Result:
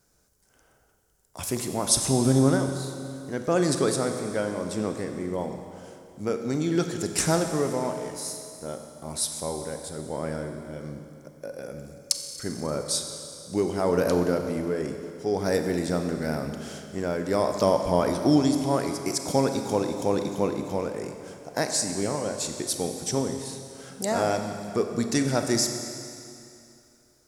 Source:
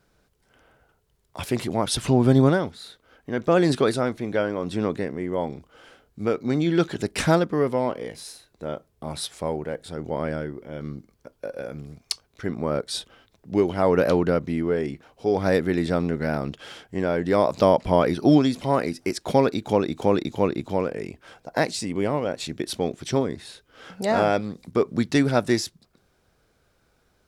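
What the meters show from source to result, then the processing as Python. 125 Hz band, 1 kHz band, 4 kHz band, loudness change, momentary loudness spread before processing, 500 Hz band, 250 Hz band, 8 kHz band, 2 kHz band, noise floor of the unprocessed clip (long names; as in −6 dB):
−3.5 dB, −3.5 dB, +0.5 dB, −3.0 dB, 16 LU, −3.5 dB, −3.0 dB, +9.0 dB, −4.5 dB, −67 dBFS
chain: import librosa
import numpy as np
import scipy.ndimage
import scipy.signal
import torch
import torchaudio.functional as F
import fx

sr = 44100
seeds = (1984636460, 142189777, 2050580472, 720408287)

y = fx.high_shelf_res(x, sr, hz=4700.0, db=10.5, q=1.5)
y = fx.rev_schroeder(y, sr, rt60_s=2.6, comb_ms=30, drr_db=5.5)
y = F.gain(torch.from_numpy(y), -4.5).numpy()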